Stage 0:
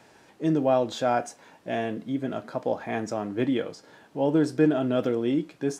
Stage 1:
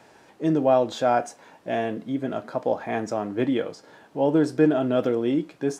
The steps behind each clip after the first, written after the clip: bell 720 Hz +3.5 dB 2.4 oct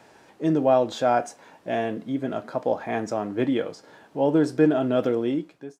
ending faded out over 0.60 s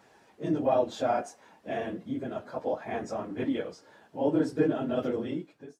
phase scrambler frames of 50 ms; gain -6.5 dB

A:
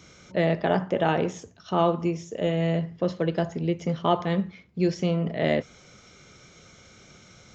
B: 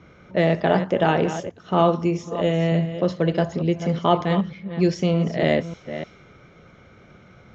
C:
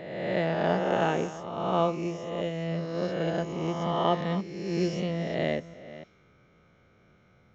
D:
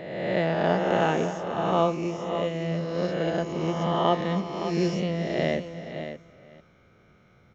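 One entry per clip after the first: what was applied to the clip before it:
reverse delay 0.302 s, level -11 dB; low-pass opened by the level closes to 1700 Hz, open at -21 dBFS; gain +4 dB
spectral swells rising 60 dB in 1.96 s; upward expander 1.5:1, over -25 dBFS; gain -9 dB
echo 0.566 s -10 dB; gain +2.5 dB

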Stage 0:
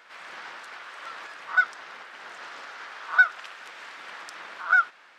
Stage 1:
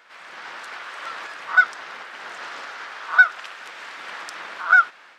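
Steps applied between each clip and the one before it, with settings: AGC gain up to 6.5 dB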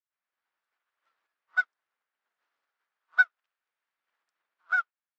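upward expander 2.5:1, over -37 dBFS; gain -7 dB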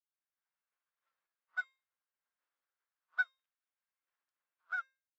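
resonator 530 Hz, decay 0.34 s, mix 70%; gain -1.5 dB

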